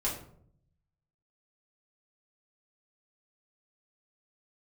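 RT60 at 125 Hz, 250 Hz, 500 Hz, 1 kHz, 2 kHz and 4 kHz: 1.2 s, 0.90 s, 0.70 s, 0.55 s, 0.40 s, 0.35 s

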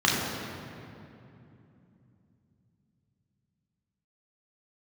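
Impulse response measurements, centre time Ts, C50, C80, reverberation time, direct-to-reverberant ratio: 121 ms, 0.0 dB, 1.5 dB, 2.8 s, -5.0 dB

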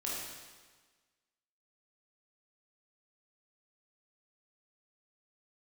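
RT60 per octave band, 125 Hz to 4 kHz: 1.4 s, 1.4 s, 1.4 s, 1.4 s, 1.4 s, 1.3 s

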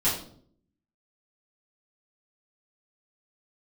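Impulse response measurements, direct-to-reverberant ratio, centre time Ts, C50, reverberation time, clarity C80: -10.0 dB, 36 ms, 5.5 dB, 0.60 s, 9.5 dB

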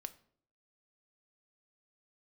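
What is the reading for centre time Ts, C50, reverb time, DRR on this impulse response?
3 ms, 17.5 dB, 0.60 s, 10.0 dB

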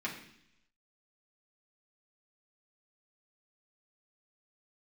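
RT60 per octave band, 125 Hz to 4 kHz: 0.90 s, 0.90 s, 0.75 s, 0.70 s, 0.90 s, 0.95 s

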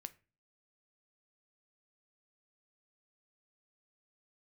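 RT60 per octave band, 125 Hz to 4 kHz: 0.55 s, 0.50 s, 0.40 s, 0.30 s, 0.35 s, 0.25 s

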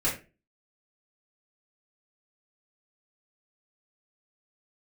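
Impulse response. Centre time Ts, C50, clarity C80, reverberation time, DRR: 27 ms, 7.5 dB, 13.5 dB, 0.30 s, -6.5 dB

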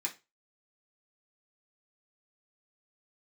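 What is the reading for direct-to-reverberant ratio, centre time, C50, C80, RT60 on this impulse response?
-2.5 dB, 10 ms, 15.0 dB, 22.5 dB, 0.25 s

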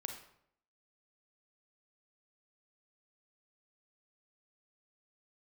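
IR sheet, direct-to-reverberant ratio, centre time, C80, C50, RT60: 4.0 dB, 23 ms, 10.0 dB, 6.0 dB, 0.70 s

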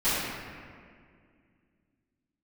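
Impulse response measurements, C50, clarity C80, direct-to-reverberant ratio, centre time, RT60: -3.5 dB, -1.0 dB, -17.5 dB, 136 ms, 2.1 s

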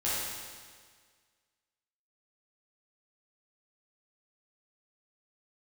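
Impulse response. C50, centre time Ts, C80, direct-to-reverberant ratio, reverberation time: -3.0 dB, 121 ms, -0.5 dB, -10.0 dB, 1.7 s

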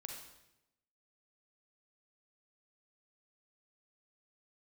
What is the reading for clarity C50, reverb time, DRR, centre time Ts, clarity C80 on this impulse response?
3.0 dB, 0.90 s, 1.5 dB, 42 ms, 6.0 dB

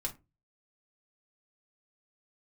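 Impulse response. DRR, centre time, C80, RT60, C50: 0.0 dB, 9 ms, 24.5 dB, 0.25 s, 16.0 dB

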